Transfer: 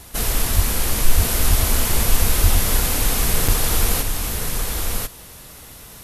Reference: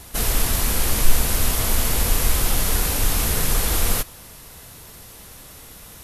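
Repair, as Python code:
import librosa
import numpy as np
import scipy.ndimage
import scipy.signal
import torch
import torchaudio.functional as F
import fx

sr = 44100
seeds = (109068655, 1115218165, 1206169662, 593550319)

y = fx.fix_deplosive(x, sr, at_s=(0.55, 1.16, 1.49, 2.42))
y = fx.fix_interpolate(y, sr, at_s=(3.48,), length_ms=5.4)
y = fx.fix_echo_inverse(y, sr, delay_ms=1044, level_db=-3.5)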